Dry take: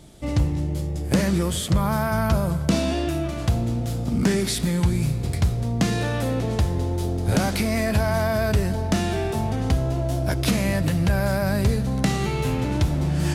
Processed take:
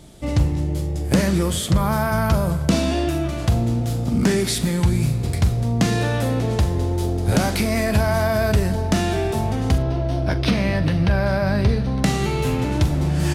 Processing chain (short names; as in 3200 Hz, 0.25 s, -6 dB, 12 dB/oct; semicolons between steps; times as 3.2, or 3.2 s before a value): 9.78–12.04 polynomial smoothing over 15 samples; doubler 43 ms -13.5 dB; gain +2.5 dB